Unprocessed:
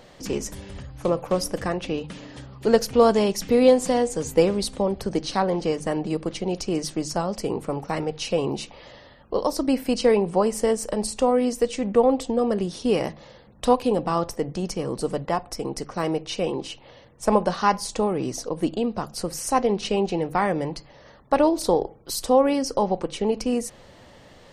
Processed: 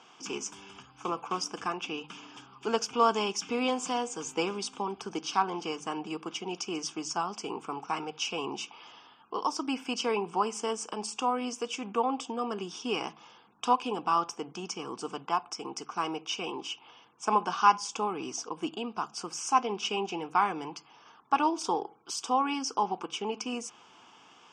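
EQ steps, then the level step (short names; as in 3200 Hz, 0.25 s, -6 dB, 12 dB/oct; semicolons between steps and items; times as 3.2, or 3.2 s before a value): BPF 450–6000 Hz; fixed phaser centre 2800 Hz, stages 8; +1.5 dB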